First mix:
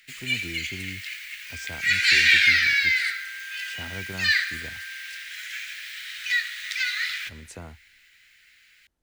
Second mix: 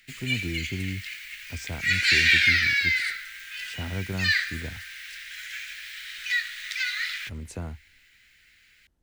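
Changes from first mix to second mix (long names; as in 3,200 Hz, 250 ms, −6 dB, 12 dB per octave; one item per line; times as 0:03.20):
first sound: send off
second sound −11.0 dB
master: add low-shelf EQ 360 Hz +8.5 dB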